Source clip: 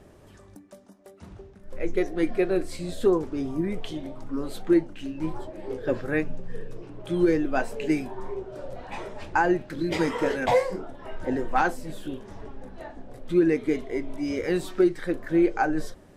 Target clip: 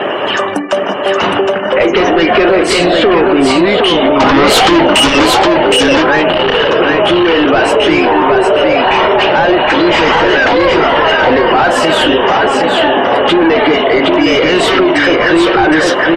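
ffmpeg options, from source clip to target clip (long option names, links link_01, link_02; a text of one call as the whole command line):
ffmpeg -i in.wav -filter_complex "[0:a]asettb=1/sr,asplit=3[link_01][link_02][link_03];[link_01]atrim=end=2.844[link_04];[link_02]atrim=start=2.84:end=3.56,asetpts=PTS-STARTPTS,afade=type=in:duration=0.004:curve=qsin,afade=type=out:start_time=0.716:duration=0.004:curve=qsin,aemphasis=mode=reproduction:type=75kf[link_05];[link_03]atrim=start=3.556[link_06];[link_04][link_05]acrossfade=duration=0.004:curve1=hsin:curve2=qsin[link_07];[link_07][link_06]acrossfade=duration=0.004:curve1=qsin:curve2=hsin,asettb=1/sr,asplit=3[link_08][link_09][link_10];[link_08]atrim=end=6.294[link_11];[link_09]atrim=start=6.29:end=6.7,asetpts=PTS-STARTPTS,afade=type=in:duration=0.004:curve=qsin,afade=type=out:start_time=0.406:duration=0.004:curve=qsin,acrusher=bits=2:mode=log:mix=0:aa=0.000001[link_12];[link_10]atrim=start=6.696[link_13];[link_11][link_12]acrossfade=duration=0.004:curve1=hsin:curve2=qsin[link_14];[link_14][link_13]acrossfade=duration=0.004:curve1=qsin:curve2=hsin,highpass=frequency=840:poles=1,equalizer=frequency=2900:width=7.9:gain=13,asplit=2[link_15][link_16];[link_16]highpass=frequency=720:poles=1,volume=35dB,asoftclip=type=tanh:threshold=-11dB[link_17];[link_15][link_17]amix=inputs=2:normalize=0,lowpass=frequency=1100:poles=1,volume=-6dB,acompressor=threshold=-27dB:ratio=12,asplit=3[link_18][link_19][link_20];[link_18]afade=type=out:start_time=4.19:duration=0.02[link_21];[link_19]aeval=exprs='0.0891*(cos(1*acos(clip(val(0)/0.0891,-1,1)))-cos(1*PI/2))+0.0447*(cos(5*acos(clip(val(0)/0.0891,-1,1)))-cos(5*PI/2))':channel_layout=same,afade=type=in:start_time=4.19:duration=0.02,afade=type=out:start_time=5.25:duration=0.02[link_22];[link_20]afade=type=in:start_time=5.25:duration=0.02[link_23];[link_21][link_22][link_23]amix=inputs=3:normalize=0,aecho=1:1:765:0.668,afftdn=noise_reduction=28:noise_floor=-49,alimiter=level_in=23dB:limit=-1dB:release=50:level=0:latency=1,volume=-1dB" out.wav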